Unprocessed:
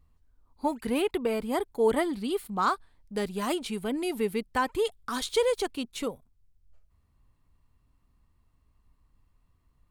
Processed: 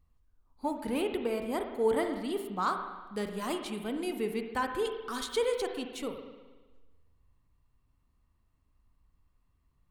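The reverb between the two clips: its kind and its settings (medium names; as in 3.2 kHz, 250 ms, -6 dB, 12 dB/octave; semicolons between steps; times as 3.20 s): spring tank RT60 1.3 s, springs 38/58 ms, chirp 70 ms, DRR 5 dB; trim -5 dB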